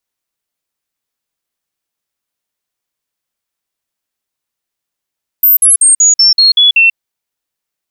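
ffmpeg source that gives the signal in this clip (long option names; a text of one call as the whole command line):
ffmpeg -f lavfi -i "aevalsrc='0.668*clip(min(mod(t,0.19),0.14-mod(t,0.19))/0.005,0,1)*sin(2*PI*13600*pow(2,-floor(t/0.19)/3)*mod(t,0.19))':duration=1.52:sample_rate=44100" out.wav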